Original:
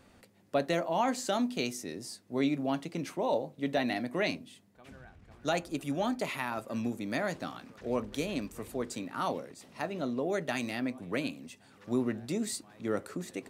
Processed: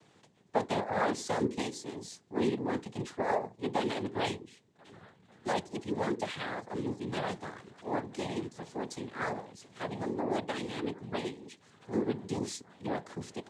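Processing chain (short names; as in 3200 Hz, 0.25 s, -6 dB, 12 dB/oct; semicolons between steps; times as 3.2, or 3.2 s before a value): dynamic EQ 3400 Hz, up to -4 dB, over -52 dBFS, Q 1.1; noise vocoder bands 6; gain -1 dB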